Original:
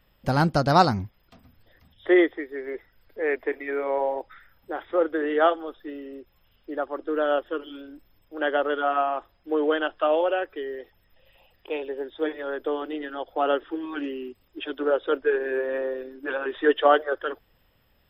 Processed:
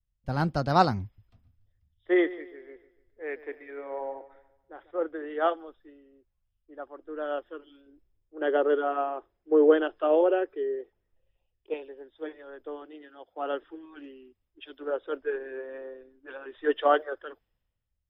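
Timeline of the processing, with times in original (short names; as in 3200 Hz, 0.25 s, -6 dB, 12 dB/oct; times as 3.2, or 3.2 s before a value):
1.03–4.91 feedback echo 0.146 s, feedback 59%, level -14.5 dB
7.86–11.74 bell 390 Hz +12 dB
12.85–13.55 HPF 69 Hz
whole clip: high shelf 4700 Hz -9 dB; three-band expander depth 70%; gain -8 dB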